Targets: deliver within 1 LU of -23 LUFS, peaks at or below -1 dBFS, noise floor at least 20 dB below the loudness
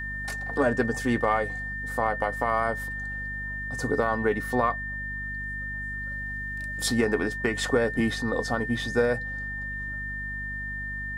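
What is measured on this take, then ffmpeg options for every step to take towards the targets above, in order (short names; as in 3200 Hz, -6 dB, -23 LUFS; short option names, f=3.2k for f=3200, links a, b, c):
hum 50 Hz; harmonics up to 250 Hz; hum level -36 dBFS; steady tone 1800 Hz; tone level -32 dBFS; loudness -28.0 LUFS; peak -10.5 dBFS; loudness target -23.0 LUFS
-> -af "bandreject=f=50:t=h:w=4,bandreject=f=100:t=h:w=4,bandreject=f=150:t=h:w=4,bandreject=f=200:t=h:w=4,bandreject=f=250:t=h:w=4"
-af "bandreject=f=1.8k:w=30"
-af "volume=5dB"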